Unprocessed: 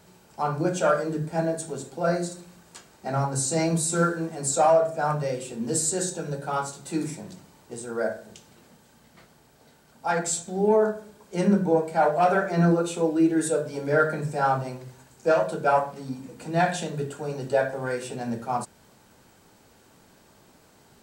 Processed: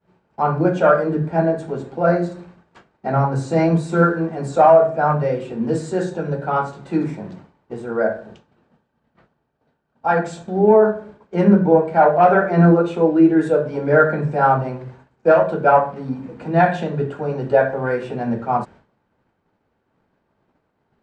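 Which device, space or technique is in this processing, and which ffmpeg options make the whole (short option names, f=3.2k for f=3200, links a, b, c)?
hearing-loss simulation: -filter_complex "[0:a]lowpass=2k,agate=range=-33dB:threshold=-45dB:ratio=3:detection=peak,asettb=1/sr,asplit=3[a][b][c];[a]atrim=end=8.184[d];[b]atrim=start=8.18:end=10.56,asetpts=PTS-STARTPTS,afade=t=in:d=0.004:c=qsin,afade=t=out:st=2.376:d=0.004:c=qsin,bandreject=f=2.1k:w=11[e];[c]atrim=start=10.556[f];[d][e]acrossfade=d=0.004:c1=hsin:c2=qsin[g];[g][f]acrossfade=d=0.004:c1=qsin:c2=hsin,volume=8dB"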